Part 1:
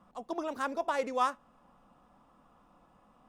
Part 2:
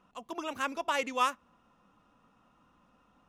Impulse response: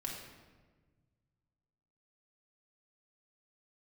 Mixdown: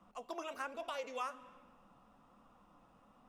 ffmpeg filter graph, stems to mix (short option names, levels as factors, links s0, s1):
-filter_complex "[0:a]flanger=delay=2.9:depth=6.4:regen=69:speed=1.2:shape=triangular,volume=1.12[s0];[1:a]volume=-1,volume=0.398,asplit=2[s1][s2];[s2]volume=0.299[s3];[2:a]atrim=start_sample=2205[s4];[s3][s4]afir=irnorm=-1:irlink=0[s5];[s0][s1][s5]amix=inputs=3:normalize=0,bandreject=f=1700:w=24,acrossover=split=460|1300[s6][s7][s8];[s6]acompressor=threshold=0.002:ratio=4[s9];[s7]acompressor=threshold=0.00891:ratio=4[s10];[s8]acompressor=threshold=0.00398:ratio=4[s11];[s9][s10][s11]amix=inputs=3:normalize=0"